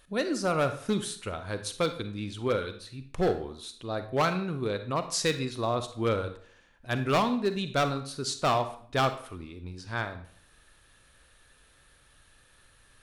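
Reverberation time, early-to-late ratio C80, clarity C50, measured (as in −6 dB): 0.55 s, 14.5 dB, 11.0 dB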